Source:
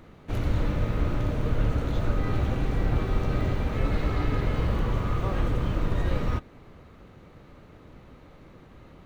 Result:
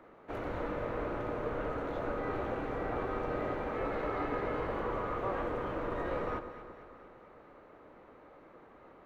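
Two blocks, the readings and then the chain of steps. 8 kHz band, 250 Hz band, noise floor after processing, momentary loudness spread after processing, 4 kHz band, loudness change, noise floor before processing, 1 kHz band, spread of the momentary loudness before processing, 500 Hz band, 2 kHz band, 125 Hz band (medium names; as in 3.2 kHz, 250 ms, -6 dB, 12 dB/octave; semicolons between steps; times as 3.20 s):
no reading, -8.0 dB, -57 dBFS, 21 LU, -12.0 dB, -8.0 dB, -51 dBFS, -0.5 dB, 1 LU, -0.5 dB, -3.5 dB, -18.0 dB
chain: three-band isolator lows -20 dB, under 320 Hz, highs -17 dB, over 2 kHz; on a send: echo whose repeats swap between lows and highs 114 ms, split 1.2 kHz, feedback 75%, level -9.5 dB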